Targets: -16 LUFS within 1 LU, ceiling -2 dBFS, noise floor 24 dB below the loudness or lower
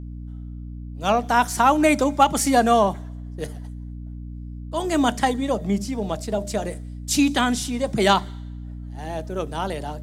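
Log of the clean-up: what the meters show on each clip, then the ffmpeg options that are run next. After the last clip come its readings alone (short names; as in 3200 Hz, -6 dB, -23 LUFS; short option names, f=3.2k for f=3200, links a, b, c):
hum 60 Hz; harmonics up to 300 Hz; hum level -32 dBFS; loudness -21.5 LUFS; peak -5.0 dBFS; loudness target -16.0 LUFS
-> -af "bandreject=f=60:t=h:w=6,bandreject=f=120:t=h:w=6,bandreject=f=180:t=h:w=6,bandreject=f=240:t=h:w=6,bandreject=f=300:t=h:w=6"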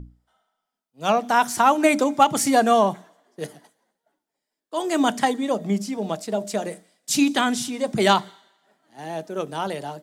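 hum none; loudness -21.5 LUFS; peak -4.5 dBFS; loudness target -16.0 LUFS
-> -af "volume=5.5dB,alimiter=limit=-2dB:level=0:latency=1"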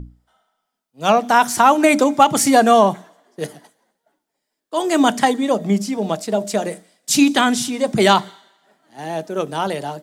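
loudness -16.5 LUFS; peak -2.0 dBFS; noise floor -78 dBFS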